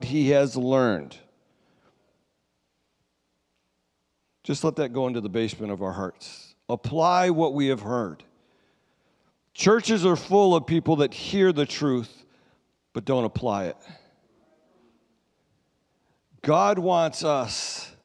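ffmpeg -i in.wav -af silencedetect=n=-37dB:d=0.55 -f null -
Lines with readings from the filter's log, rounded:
silence_start: 1.16
silence_end: 4.45 | silence_duration: 3.29
silence_start: 8.20
silence_end: 9.56 | silence_duration: 1.36
silence_start: 12.06
silence_end: 12.95 | silence_duration: 0.89
silence_start: 13.91
silence_end: 16.44 | silence_duration: 2.53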